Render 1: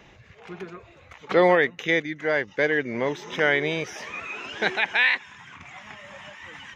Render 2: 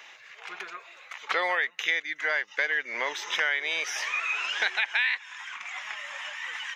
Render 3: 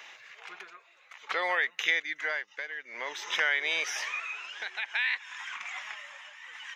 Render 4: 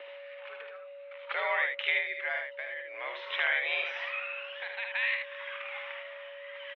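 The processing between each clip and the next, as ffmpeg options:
-af "highpass=1.2k,acompressor=threshold=-32dB:ratio=4,volume=7.5dB"
-af "tremolo=f=0.55:d=0.74"
-af "aeval=exprs='val(0)+0.00891*sin(2*PI*490*n/s)':c=same,aecho=1:1:52|76:0.299|0.562,highpass=f=240:t=q:w=0.5412,highpass=f=240:t=q:w=1.307,lowpass=f=3.4k:t=q:w=0.5176,lowpass=f=3.4k:t=q:w=0.7071,lowpass=f=3.4k:t=q:w=1.932,afreqshift=74,volume=-2.5dB"

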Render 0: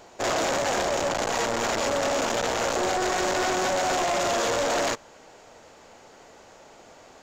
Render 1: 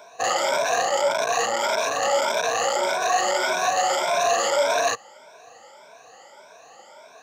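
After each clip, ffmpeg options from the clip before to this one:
-af "afftfilt=real='re*pow(10,19/40*sin(2*PI*(1.6*log(max(b,1)*sr/1024/100)/log(2)-(1.7)*(pts-256)/sr)))':imag='im*pow(10,19/40*sin(2*PI*(1.6*log(max(b,1)*sr/1024/100)/log(2)-(1.7)*(pts-256)/sr)))':win_size=1024:overlap=0.75,highpass=f=120:w=0.5412,highpass=f=120:w=1.3066,lowshelf=f=440:t=q:w=1.5:g=-9,volume=-1.5dB"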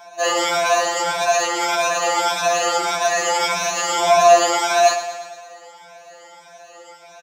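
-filter_complex "[0:a]asplit=2[a][b];[b]aecho=0:1:114|228|342|456|570|684|798:0.266|0.16|0.0958|0.0575|0.0345|0.0207|0.0124[c];[a][c]amix=inputs=2:normalize=0,afftfilt=real='re*2.83*eq(mod(b,8),0)':imag='im*2.83*eq(mod(b,8),0)':win_size=2048:overlap=0.75,volume=6.5dB"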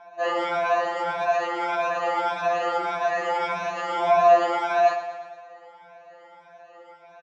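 -af "lowpass=2k,volume=-4.5dB"

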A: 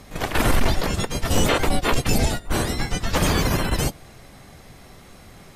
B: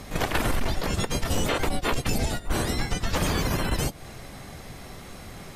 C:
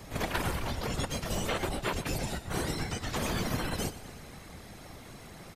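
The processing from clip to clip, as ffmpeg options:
-af "acompressor=threshold=-26dB:ratio=6,volume=4dB"
-filter_complex "[0:a]acrossover=split=110[a][b];[a]asoftclip=type=tanh:threshold=-25.5dB[c];[c][b]amix=inputs=2:normalize=0,afftfilt=real='hypot(re,im)*cos(2*PI*random(0))':imag='hypot(re,im)*sin(2*PI*random(1))':win_size=512:overlap=0.75,aecho=1:1:120|240|360|480|600|720:0.178|0.105|0.0619|0.0365|0.0215|0.0127"

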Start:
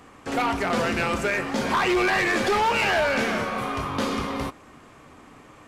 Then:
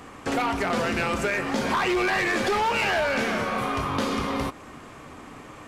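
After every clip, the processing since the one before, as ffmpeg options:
-af "acompressor=threshold=-30dB:ratio=3,volume=5.5dB"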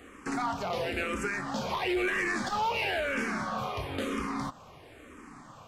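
-filter_complex "[0:a]asplit=2[a][b];[b]afreqshift=-1[c];[a][c]amix=inputs=2:normalize=1,volume=-4dB"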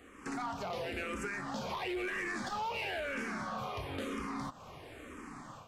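-af "acompressor=threshold=-42dB:ratio=2,asoftclip=type=tanh:threshold=-28.5dB,dynaudnorm=f=150:g=3:m=7.5dB,volume=-6dB"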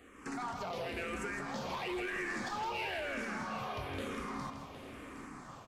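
-af "aecho=1:1:162|762:0.422|0.251,volume=-1.5dB"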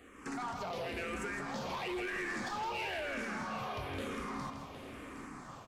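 -af "asoftclip=type=tanh:threshold=-30.5dB,volume=1dB"

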